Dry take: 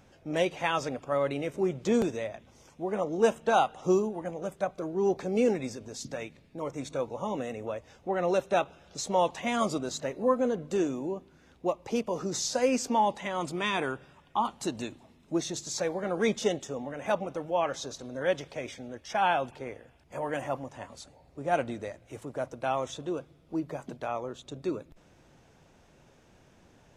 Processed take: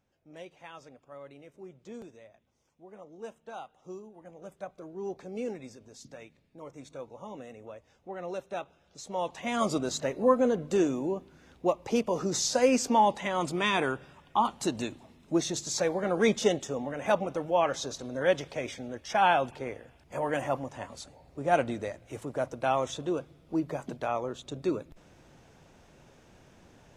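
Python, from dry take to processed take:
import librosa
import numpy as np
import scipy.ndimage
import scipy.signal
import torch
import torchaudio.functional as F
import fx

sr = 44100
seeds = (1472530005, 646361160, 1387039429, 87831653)

y = fx.gain(x, sr, db=fx.line((4.02, -18.5), (4.48, -10.0), (9.0, -10.0), (9.78, 2.5)))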